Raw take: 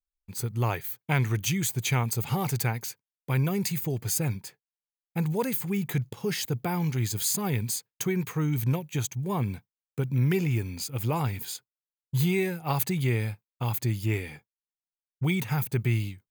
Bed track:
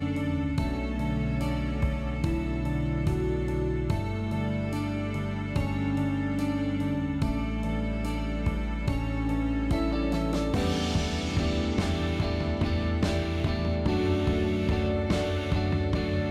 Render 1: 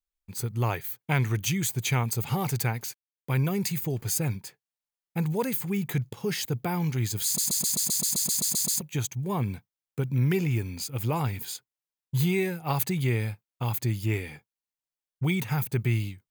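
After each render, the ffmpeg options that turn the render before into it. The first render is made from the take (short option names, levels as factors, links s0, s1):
-filter_complex "[0:a]asettb=1/sr,asplit=3[s0][s1][s2];[s0]atrim=end=2.684[s3];[s1]atrim=start=2.68:end=4.36,asetpts=PTS-STARTPTS,afade=t=in:d=0.004:c=qsin,afade=t=out:st=1.676:d=0.004:c=qsin,aeval=exprs='val(0)*gte(abs(val(0)),0.00188)':c=same[s4];[s2]atrim=start=4.356[s5];[s3][s4]acrossfade=d=0.004:c1=hsin:c2=qsin[s6];[s6][s5]acrossfade=d=0.004:c1=qsin:c2=hsin,asplit=13[s7][s8][s9][s10][s11][s12][s13][s14][s15][s16][s17][s18][s19];[s7]atrim=end=7.382[s20];[s8]atrim=start=7.248:end=7.382[s21];[s9]atrim=start=7.248:end=7.382[s22];[s10]atrim=start=7.248:end=7.382[s23];[s11]atrim=start=7.248:end=7.382[s24];[s12]atrim=start=7.248:end=7.382[s25];[s13]atrim=start=7.248:end=7.382[s26];[s14]atrim=start=7.248:end=7.382[s27];[s15]atrim=start=7.248:end=7.382[s28];[s16]atrim=start=7.248:end=7.382[s29];[s17]atrim=start=7.248:end=7.382[s30];[s18]atrim=start=7.248:end=7.382[s31];[s19]atrim=start=8.808[s32];[s20][s21]acrossfade=d=0.004:c1=hsin:c2=hsin[s33];[s33][s22]acrossfade=d=0.004:c1=hsin:c2=hsin[s34];[s34][s23]acrossfade=d=0.004:c1=hsin:c2=hsin[s35];[s35][s24]acrossfade=d=0.004:c1=hsin:c2=hsin[s36];[s36][s25]acrossfade=d=0.004:c1=hsin:c2=hsin[s37];[s37][s26]acrossfade=d=0.004:c1=hsin:c2=hsin[s38];[s38][s27]acrossfade=d=0.004:c1=hsin:c2=hsin[s39];[s39][s28]acrossfade=d=0.004:c1=hsin:c2=hsin[s40];[s40][s29]acrossfade=d=0.004:c1=hsin:c2=hsin[s41];[s41][s30]acrossfade=d=0.004:c1=hsin:c2=hsin[s42];[s42][s31]acrossfade=d=0.004:c1=hsin:c2=hsin[s43];[s43][s32]acrossfade=d=0.004:c1=hsin:c2=hsin"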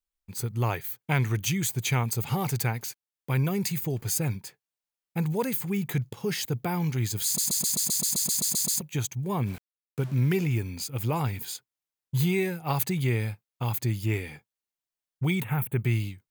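-filter_complex "[0:a]asettb=1/sr,asplit=3[s0][s1][s2];[s0]atrim=end=9.464[s3];[s1]atrim=start=9.46:end=10.48,asetpts=PTS-STARTPTS,afade=t=in:d=0.004:c=qsin,afade=t=out:st=1.016:d=0.004:c=qsin,aeval=exprs='val(0)*gte(abs(val(0)),0.00944)':c=same[s4];[s2]atrim=start=10.476[s5];[s3][s4]acrossfade=d=0.004:c1=hsin:c2=qsin[s6];[s6][s5]acrossfade=d=0.004:c1=qsin:c2=hsin,asettb=1/sr,asplit=3[s7][s8][s9];[s7]atrim=end=15.424[s10];[s8]atrim=start=15.42:end=15.84,asetpts=PTS-STARTPTS,afade=t=in:d=0.004:c=qsin,afade=t=out:st=0.416:d=0.004:c=qsin,asuperstop=centerf=5300:order=4:qfactor=0.94[s11];[s9]atrim=start=15.836[s12];[s10][s11]acrossfade=d=0.004:c1=hsin:c2=qsin[s13];[s13][s12]acrossfade=d=0.004:c1=qsin:c2=hsin"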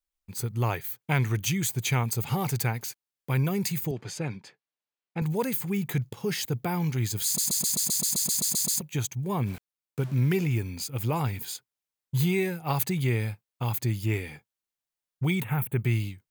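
-filter_complex "[0:a]asettb=1/sr,asplit=3[s0][s1][s2];[s0]atrim=end=3.914[s3];[s1]atrim=start=3.91:end=5.22,asetpts=PTS-STARTPTS,afade=t=in:d=0.004:c=qsin,afade=t=out:st=1.306:d=0.004:c=qsin,highpass=170,lowpass=4200[s4];[s2]atrim=start=5.216[s5];[s3][s4]acrossfade=d=0.004:c1=hsin:c2=qsin[s6];[s6][s5]acrossfade=d=0.004:c1=qsin:c2=hsin"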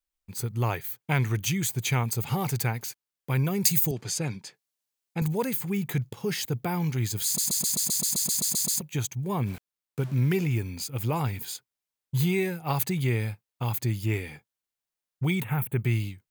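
-filter_complex "[0:a]asettb=1/sr,asplit=3[s0][s1][s2];[s0]atrim=end=3.644[s3];[s1]atrim=start=3.64:end=5.28,asetpts=PTS-STARTPTS,afade=t=in:d=0.004:c=qsin,afade=t=out:st=1.636:d=0.004:c=qsin,bass=f=250:g=2,treble=f=4000:g=11[s4];[s2]atrim=start=5.276[s5];[s3][s4]acrossfade=d=0.004:c1=hsin:c2=qsin[s6];[s6][s5]acrossfade=d=0.004:c1=qsin:c2=hsin"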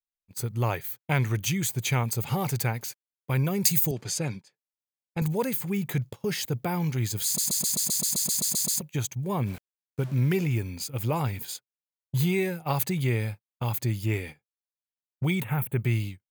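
-af "agate=range=0.141:threshold=0.0126:ratio=16:detection=peak,equalizer=f=570:w=5.3:g=4.5"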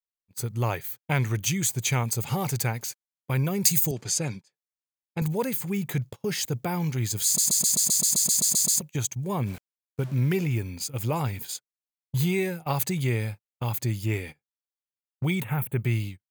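-af "agate=range=0.398:threshold=0.0112:ratio=16:detection=peak,adynamicequalizer=threshold=0.00794:dfrequency=7000:dqfactor=1.3:tfrequency=7000:tqfactor=1.3:attack=5:release=100:ratio=0.375:range=3:mode=boostabove:tftype=bell"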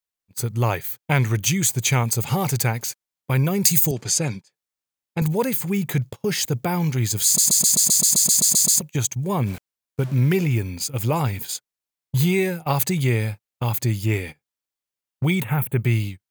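-af "volume=1.88,alimiter=limit=0.708:level=0:latency=1"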